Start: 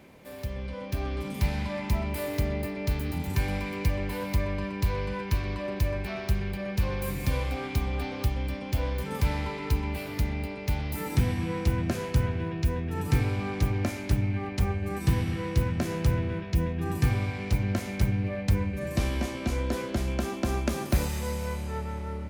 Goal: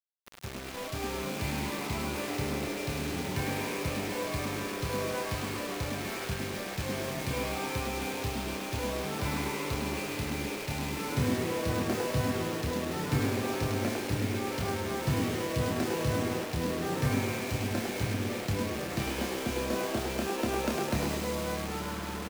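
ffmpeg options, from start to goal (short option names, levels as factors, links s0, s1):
-filter_complex "[0:a]highpass=120,lowpass=5800,asplit=2[s0][s1];[s1]adelay=28,volume=0.631[s2];[s0][s2]amix=inputs=2:normalize=0,acrusher=bits=5:mix=0:aa=0.000001,asplit=7[s3][s4][s5][s6][s7][s8][s9];[s4]adelay=103,afreqshift=130,volume=0.562[s10];[s5]adelay=206,afreqshift=260,volume=0.275[s11];[s6]adelay=309,afreqshift=390,volume=0.135[s12];[s7]adelay=412,afreqshift=520,volume=0.0661[s13];[s8]adelay=515,afreqshift=650,volume=0.0324[s14];[s9]adelay=618,afreqshift=780,volume=0.0158[s15];[s3][s10][s11][s12][s13][s14][s15]amix=inputs=7:normalize=0,volume=0.668"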